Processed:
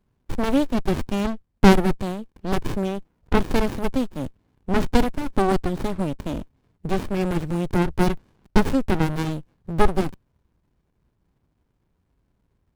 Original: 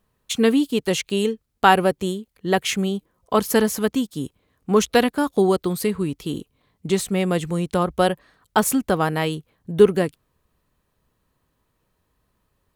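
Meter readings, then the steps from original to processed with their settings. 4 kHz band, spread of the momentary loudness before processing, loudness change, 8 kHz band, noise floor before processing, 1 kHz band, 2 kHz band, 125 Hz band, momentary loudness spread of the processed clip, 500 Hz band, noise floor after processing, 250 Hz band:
-6.5 dB, 13 LU, -2.5 dB, -11.5 dB, -72 dBFS, -4.0 dB, -4.5 dB, +2.0 dB, 11 LU, -5.0 dB, -71 dBFS, -0.5 dB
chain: vibrato 3.7 Hz 18 cents; running maximum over 65 samples; gain +3 dB

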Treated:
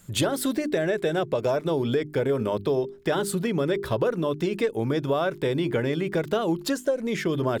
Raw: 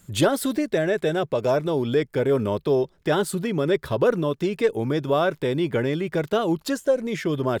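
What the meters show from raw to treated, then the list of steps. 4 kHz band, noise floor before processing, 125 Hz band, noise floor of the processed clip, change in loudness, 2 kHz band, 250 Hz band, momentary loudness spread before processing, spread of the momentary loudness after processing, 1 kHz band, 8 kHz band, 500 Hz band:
-1.0 dB, -59 dBFS, -1.5 dB, -43 dBFS, -2.5 dB, -2.0 dB, -2.0 dB, 3 LU, 2 LU, -3.0 dB, 0.0 dB, -2.5 dB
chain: notches 50/100/150/200/250/300/350/400 Hz; compressor, threshold -22 dBFS, peak gain reduction 8 dB; gain +1.5 dB

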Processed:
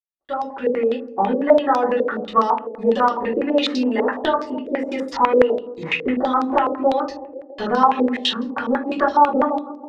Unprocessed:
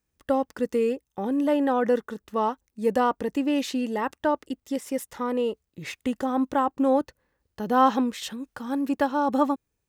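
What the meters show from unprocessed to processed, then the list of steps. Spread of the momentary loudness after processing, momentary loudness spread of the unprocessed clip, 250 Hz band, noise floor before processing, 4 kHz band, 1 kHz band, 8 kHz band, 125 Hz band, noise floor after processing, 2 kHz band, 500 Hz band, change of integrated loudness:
9 LU, 10 LU, +3.0 dB, -80 dBFS, +11.5 dB, +8.0 dB, n/a, +5.0 dB, -39 dBFS, +8.5 dB, +7.0 dB, +6.0 dB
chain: opening faded in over 1.53 s; gate with hold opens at -46 dBFS; reverb removal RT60 0.61 s; low shelf 240 Hz -10.5 dB; compressor 4:1, threshold -32 dBFS, peak gain reduction 14 dB; on a send: narrowing echo 0.136 s, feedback 75%, band-pass 380 Hz, level -12.5 dB; on the sum: shoebox room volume 130 m³, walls furnished, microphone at 3.2 m; stepped low-pass 12 Hz 490–5000 Hz; gain +5 dB

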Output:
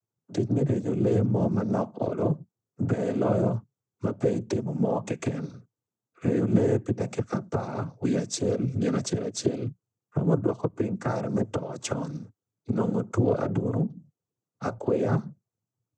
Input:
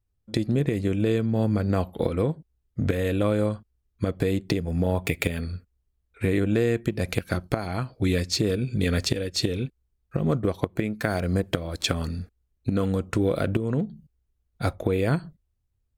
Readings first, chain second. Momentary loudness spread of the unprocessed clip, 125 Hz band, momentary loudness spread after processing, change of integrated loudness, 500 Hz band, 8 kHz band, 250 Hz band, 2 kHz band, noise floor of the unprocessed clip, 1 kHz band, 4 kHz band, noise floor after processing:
8 LU, -2.0 dB, 9 LU, -1.5 dB, -0.5 dB, -1.0 dB, -0.5 dB, -9.5 dB, -75 dBFS, 0.0 dB, -11.0 dB, under -85 dBFS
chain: noise vocoder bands 16; band shelf 2800 Hz -12 dB

